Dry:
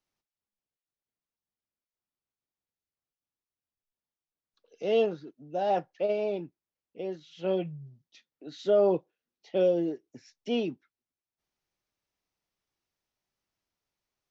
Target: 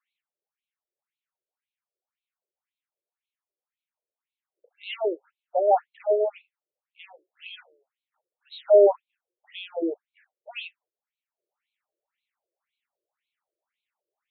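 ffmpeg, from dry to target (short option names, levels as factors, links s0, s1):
-af "afftfilt=real='re*between(b*sr/1024,440*pow(3100/440,0.5+0.5*sin(2*PI*1.9*pts/sr))/1.41,440*pow(3100/440,0.5+0.5*sin(2*PI*1.9*pts/sr))*1.41)':imag='im*between(b*sr/1024,440*pow(3100/440,0.5+0.5*sin(2*PI*1.9*pts/sr))/1.41,440*pow(3100/440,0.5+0.5*sin(2*PI*1.9*pts/sr))*1.41)':win_size=1024:overlap=0.75,volume=2.66"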